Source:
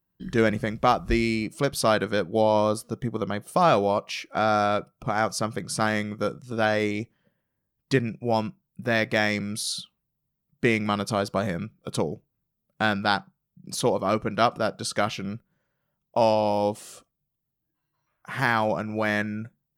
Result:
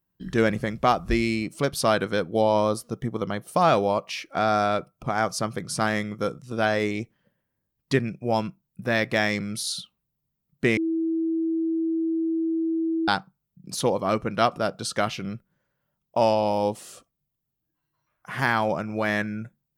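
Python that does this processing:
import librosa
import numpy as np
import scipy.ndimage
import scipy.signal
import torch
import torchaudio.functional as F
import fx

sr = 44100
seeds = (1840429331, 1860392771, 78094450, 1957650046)

y = fx.edit(x, sr, fx.bleep(start_s=10.77, length_s=2.31, hz=326.0, db=-22.0), tone=tone)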